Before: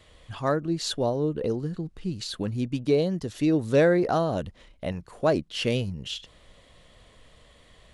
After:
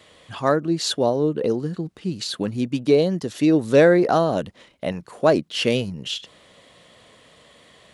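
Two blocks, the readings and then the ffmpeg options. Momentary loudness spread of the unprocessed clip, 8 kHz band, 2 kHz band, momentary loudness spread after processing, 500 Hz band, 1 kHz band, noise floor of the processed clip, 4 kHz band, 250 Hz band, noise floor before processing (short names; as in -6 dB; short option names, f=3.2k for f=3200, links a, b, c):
13 LU, +6.0 dB, +6.0 dB, 14 LU, +6.0 dB, +6.0 dB, -53 dBFS, +6.0 dB, +5.5 dB, -56 dBFS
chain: -af "highpass=160,volume=6dB"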